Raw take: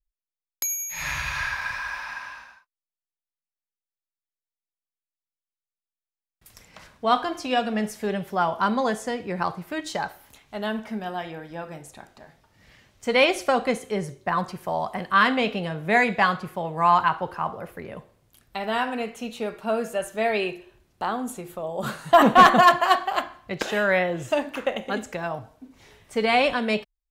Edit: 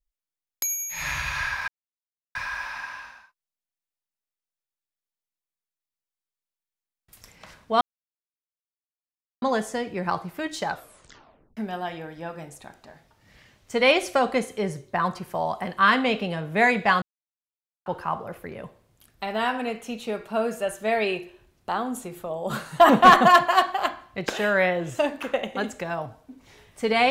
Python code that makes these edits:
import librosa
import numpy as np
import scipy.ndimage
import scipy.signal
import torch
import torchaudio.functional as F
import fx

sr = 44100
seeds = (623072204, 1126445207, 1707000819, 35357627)

y = fx.edit(x, sr, fx.insert_silence(at_s=1.68, length_s=0.67),
    fx.silence(start_s=7.14, length_s=1.61),
    fx.tape_stop(start_s=10.02, length_s=0.88),
    fx.silence(start_s=16.35, length_s=0.84), tone=tone)